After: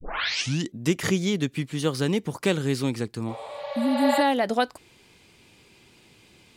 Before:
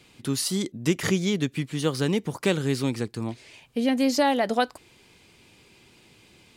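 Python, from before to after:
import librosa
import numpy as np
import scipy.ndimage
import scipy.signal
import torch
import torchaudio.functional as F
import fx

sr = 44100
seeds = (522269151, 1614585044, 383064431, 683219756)

y = fx.tape_start_head(x, sr, length_s=0.71)
y = fx.spec_repair(y, sr, seeds[0], start_s=3.31, length_s=0.87, low_hz=390.0, high_hz=7100.0, source='both')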